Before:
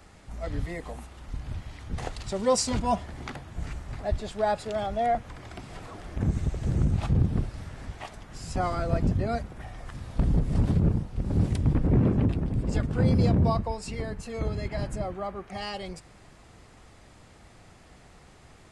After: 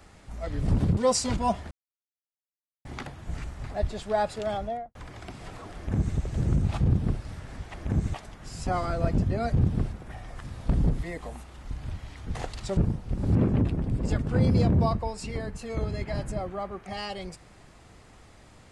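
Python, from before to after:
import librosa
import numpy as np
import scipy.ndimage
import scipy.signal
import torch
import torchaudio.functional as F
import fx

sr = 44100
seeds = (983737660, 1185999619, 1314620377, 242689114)

y = fx.studio_fade_out(x, sr, start_s=4.82, length_s=0.42)
y = fx.edit(y, sr, fx.swap(start_s=0.61, length_s=1.79, other_s=10.48, other_length_s=0.36),
    fx.insert_silence(at_s=3.14, length_s=1.14),
    fx.duplicate(start_s=6.05, length_s=0.4, to_s=8.03),
    fx.duplicate(start_s=7.11, length_s=0.39, to_s=9.42),
    fx.cut(start_s=11.42, length_s=0.57), tone=tone)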